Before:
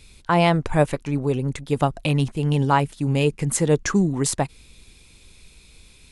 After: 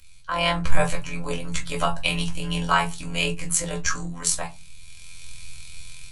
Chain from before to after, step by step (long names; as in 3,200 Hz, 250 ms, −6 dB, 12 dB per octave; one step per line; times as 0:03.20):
guitar amp tone stack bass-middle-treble 10-0-10
automatic gain control gain up to 13 dB
phases set to zero 85.4 Hz
amplitude modulation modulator 130 Hz, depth 35%
convolution reverb RT60 0.25 s, pre-delay 4 ms, DRR −2.5 dB
level −3.5 dB